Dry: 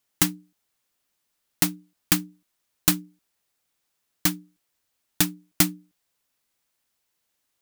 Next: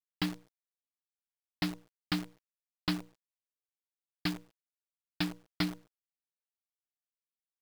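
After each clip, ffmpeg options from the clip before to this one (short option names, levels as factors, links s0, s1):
-af "aresample=11025,asoftclip=type=tanh:threshold=0.106,aresample=44100,acrusher=bits=7:dc=4:mix=0:aa=0.000001,volume=0.631"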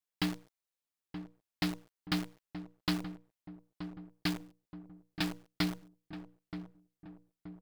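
-filter_complex "[0:a]asplit=2[s0][s1];[s1]aeval=exprs='0.0211*(abs(mod(val(0)/0.0211+3,4)-2)-1)':c=same,volume=0.316[s2];[s0][s2]amix=inputs=2:normalize=0,asplit=2[s3][s4];[s4]adelay=926,lowpass=f=920:p=1,volume=0.355,asplit=2[s5][s6];[s6]adelay=926,lowpass=f=920:p=1,volume=0.53,asplit=2[s7][s8];[s8]adelay=926,lowpass=f=920:p=1,volume=0.53,asplit=2[s9][s10];[s10]adelay=926,lowpass=f=920:p=1,volume=0.53,asplit=2[s11][s12];[s12]adelay=926,lowpass=f=920:p=1,volume=0.53,asplit=2[s13][s14];[s14]adelay=926,lowpass=f=920:p=1,volume=0.53[s15];[s3][s5][s7][s9][s11][s13][s15]amix=inputs=7:normalize=0"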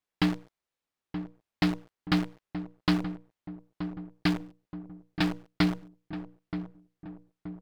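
-af "lowpass=f=2400:p=1,volume=2.51"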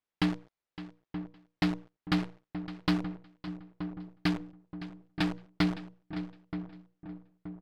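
-af "aecho=1:1:562|1124:0.178|0.0285,adynamicsmooth=sensitivity=6.5:basefreq=6400,volume=0.75"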